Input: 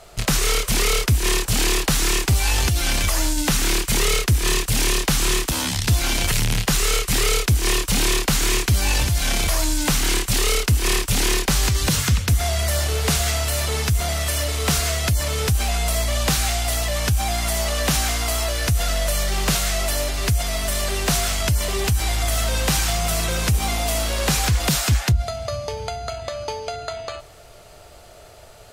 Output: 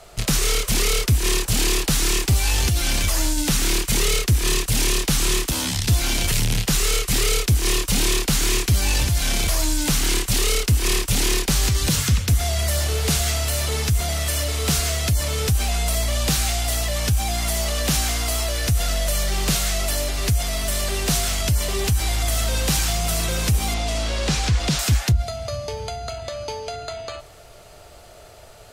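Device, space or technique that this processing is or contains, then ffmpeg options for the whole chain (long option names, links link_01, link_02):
one-band saturation: -filter_complex "[0:a]asettb=1/sr,asplit=3[link_01][link_02][link_03];[link_01]atrim=end=23.744[link_04];[link_02]atrim=start=23.74:end=24.79,asetpts=PTS-STARTPTS,afade=type=in:duration=0.004:curve=qsin,afade=type=out:start_time=1.046:duration=0.004:curve=qsin,lowpass=6100[link_05];[link_03]atrim=start=24.786[link_06];[link_04][link_05]acrossfade=duration=0.004:curve1=hsin:curve2=qsin[link_07];[link_07][link_06]acrossfade=duration=0.004:curve1=qsin:curve2=hsin,acrossover=split=500|2500[link_08][link_09][link_10];[link_09]asoftclip=type=tanh:threshold=-29.5dB[link_11];[link_08][link_11][link_10]amix=inputs=3:normalize=0"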